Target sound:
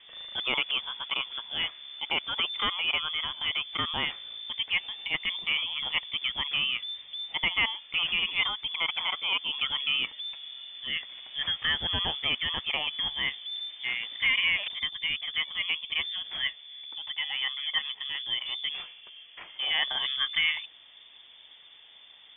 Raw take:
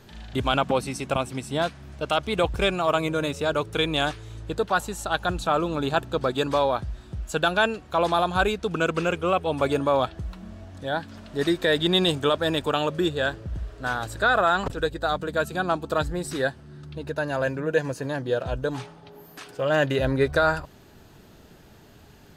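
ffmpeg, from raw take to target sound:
-filter_complex "[0:a]lowpass=f=3.1k:t=q:w=0.5098,lowpass=f=3.1k:t=q:w=0.6013,lowpass=f=3.1k:t=q:w=0.9,lowpass=f=3.1k:t=q:w=2.563,afreqshift=-3600,acrossover=split=2800[a][b];[b]acompressor=threshold=-37dB:ratio=4:attack=1:release=60[c];[a][c]amix=inputs=2:normalize=0,volume=-2dB"

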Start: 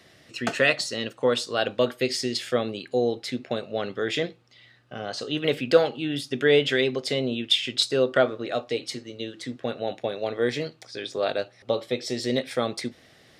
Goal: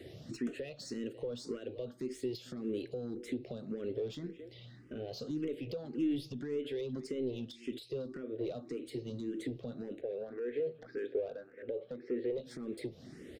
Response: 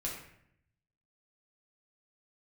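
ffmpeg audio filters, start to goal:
-filter_complex "[0:a]acompressor=threshold=-33dB:ratio=8,asettb=1/sr,asplit=3[a][b][c];[a]atrim=end=10.014[d];[b]atrim=start=10.01:end=12.38,asetpts=PTS-STARTPTS,afade=t=in:d=0.004:c=qsin,afade=t=out:st=2.366:d=0.004:c=qsin,highpass=190,equalizer=f=200:t=q:w=4:g=-4,equalizer=f=310:t=q:w=4:g=-5,equalizer=f=470:t=q:w=4:g=7,equalizer=f=980:t=q:w=4:g=-7,equalizer=f=1.6k:t=q:w=4:g=10,lowpass=f=2.6k:w=0.5412,lowpass=f=2.6k:w=1.3066[e];[c]atrim=start=12.376[f];[d][e]acrossfade=d=0.004:c1=hsin:c2=qsin[g];[g][f]acrossfade=d=0.004:c1=qsin:c2=hsin,asplit=2[h][i];[i]adelay=220,highpass=300,lowpass=3.4k,asoftclip=type=hard:threshold=-28dB,volume=-19dB[j];[h][j]amix=inputs=2:normalize=0,alimiter=level_in=7dB:limit=-24dB:level=0:latency=1:release=295,volume=-7dB,asoftclip=type=tanh:threshold=-38dB,lowshelf=f=570:t=q:w=1.5:g=12.5,asplit=2[k][l];[l]afreqshift=1.8[m];[k][m]amix=inputs=2:normalize=1,volume=-1.5dB"

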